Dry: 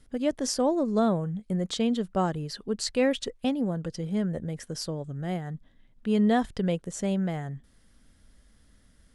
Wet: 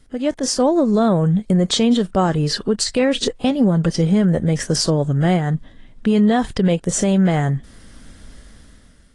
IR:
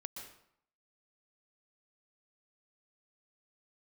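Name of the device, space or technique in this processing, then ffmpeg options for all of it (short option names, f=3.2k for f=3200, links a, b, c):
low-bitrate web radio: -filter_complex "[0:a]asettb=1/sr,asplit=3[a][b][c];[a]atrim=end=3.504[d];[b]atrim=start=3.5:end=3.92,asetpts=PTS-STARTPTS,afade=t=in:d=0.004:c=qsin,afade=t=out:st=0.416:d=0.004:c=qsin,aecho=1:1:5.1:0.44,atrim=end_sample=18522[e];[c]atrim=start=3.916[f];[d][e]acrossfade=d=0.004:c1=hsin:c2=qsin[g];[g][f]acrossfade=d=0.004:c1=qsin:c2=hsin,dynaudnorm=f=220:g=7:m=12dB,alimiter=limit=-13.5dB:level=0:latency=1:release=182,volume=5.5dB" -ar 22050 -c:a aac -b:a 32k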